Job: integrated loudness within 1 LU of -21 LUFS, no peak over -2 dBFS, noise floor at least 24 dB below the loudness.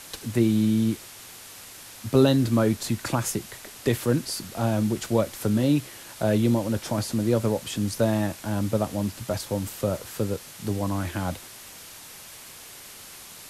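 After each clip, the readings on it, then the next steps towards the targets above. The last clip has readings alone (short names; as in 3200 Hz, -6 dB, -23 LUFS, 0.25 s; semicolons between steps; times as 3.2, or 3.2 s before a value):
noise floor -44 dBFS; noise floor target -50 dBFS; loudness -25.5 LUFS; peak -7.0 dBFS; loudness target -21.0 LUFS
-> noise print and reduce 6 dB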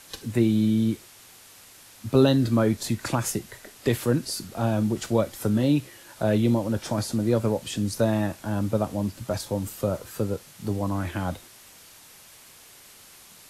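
noise floor -50 dBFS; loudness -25.5 LUFS; peak -7.0 dBFS; loudness target -21.0 LUFS
-> gain +4.5 dB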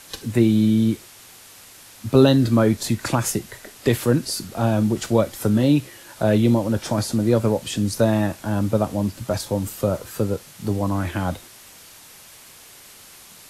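loudness -21.0 LUFS; peak -2.5 dBFS; noise floor -46 dBFS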